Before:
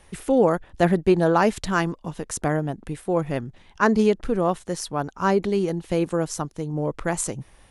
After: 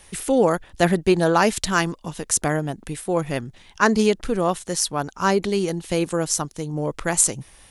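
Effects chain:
high-shelf EQ 2,500 Hz +11.5 dB

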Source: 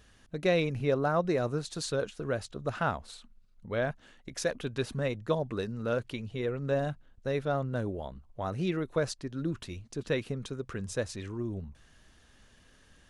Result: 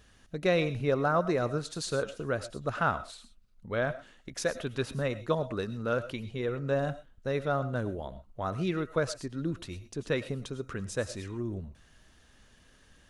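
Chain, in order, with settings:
on a send at −15 dB: high-shelf EQ 7,600 Hz +11 dB + convolution reverb, pre-delay 65 ms
on the sum: dynamic equaliser 1,300 Hz, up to +5 dB, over −48 dBFS, Q 2.7

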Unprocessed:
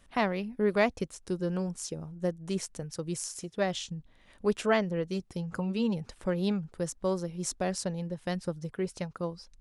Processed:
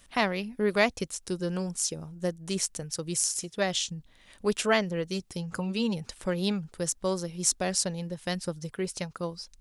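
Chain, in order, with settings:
high-shelf EQ 2,400 Hz +11 dB

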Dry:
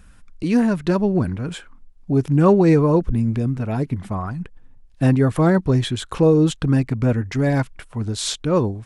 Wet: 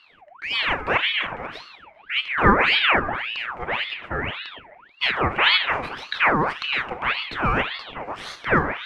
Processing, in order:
running median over 9 samples
low-pass filter 6,500 Hz 12 dB per octave
flat-topped bell 1,000 Hz +13 dB 2.3 octaves
on a send: echo through a band-pass that steps 145 ms, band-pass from 750 Hz, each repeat 0.7 octaves, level −9.5 dB
on the sum: coupled-rooms reverb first 0.64 s, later 2.2 s, from −26 dB, DRR 7 dB
ring modulator whose carrier an LFO sweeps 1,700 Hz, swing 65%, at 1.8 Hz
level −7 dB

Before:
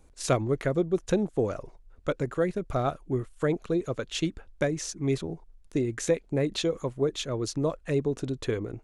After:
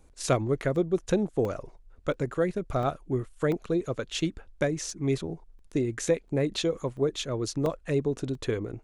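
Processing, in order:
regular buffer underruns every 0.69 s, samples 64, zero, from 0:00.76

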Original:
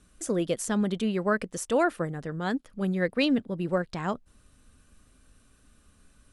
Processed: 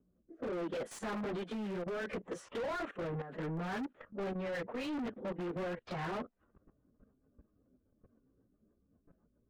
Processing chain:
adaptive Wiener filter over 9 samples
time stretch by phase vocoder 1.5×
in parallel at −10.5 dB: wrap-around overflow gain 28.5 dB
on the sum: output level in coarse steps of 18 dB
low-pass that shuts in the quiet parts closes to 320 Hz, open at −38.5 dBFS
high-shelf EQ 3,700 Hz −7.5 dB
speech leveller within 3 dB 0.5 s
rotating-speaker cabinet horn 0.7 Hz, later 7.5 Hz, at 0:02.96
mid-hump overdrive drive 29 dB, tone 1,800 Hz, clips at −26 dBFS
level −4.5 dB

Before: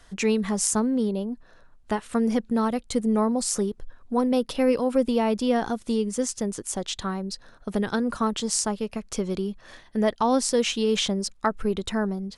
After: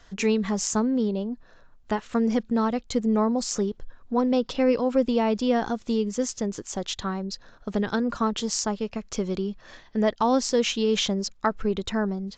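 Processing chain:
AAC 64 kbit/s 16,000 Hz

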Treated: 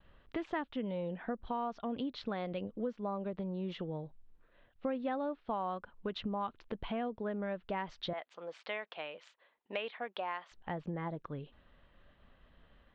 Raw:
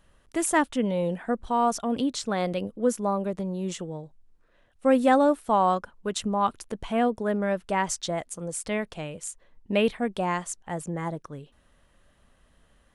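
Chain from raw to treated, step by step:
Butterworth low-pass 3,900 Hz 36 dB per octave
downward expander −60 dBFS
0:08.13–0:10.52: high-pass filter 670 Hz 12 dB per octave
downward compressor 4 to 1, threshold −35 dBFS, peak gain reduction 16.5 dB
level −1 dB

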